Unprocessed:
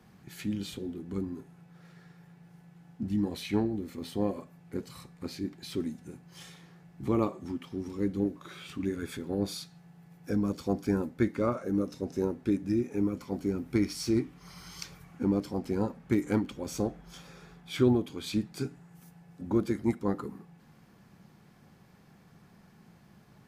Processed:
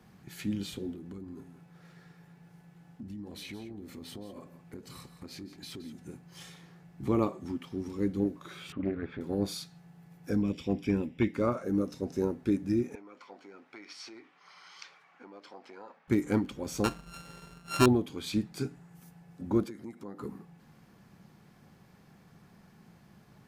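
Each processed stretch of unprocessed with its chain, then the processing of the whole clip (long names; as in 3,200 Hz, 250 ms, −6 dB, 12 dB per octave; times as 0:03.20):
0:00.94–0:05.99: downward compressor, threshold −40 dBFS + single-tap delay 171 ms −13 dB
0:08.72–0:09.21: Bessel low-pass filter 1,900 Hz, order 4 + highs frequency-modulated by the lows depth 0.29 ms
0:10.42–0:11.34: drawn EQ curve 290 Hz 0 dB, 1,400 Hz −9 dB, 2,600 Hz +12 dB + hard clipping −17.5 dBFS + Savitzky-Golay smoothing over 25 samples
0:12.95–0:16.08: downward compressor 4 to 1, threshold −31 dBFS + band-pass filter 780–3,500 Hz
0:16.84–0:17.86: samples sorted by size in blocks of 32 samples + low-pass filter 11,000 Hz + leveller curve on the samples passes 1
0:19.64–0:20.21: high-pass filter 150 Hz + downward compressor 4 to 1, threshold −41 dBFS
whole clip: no processing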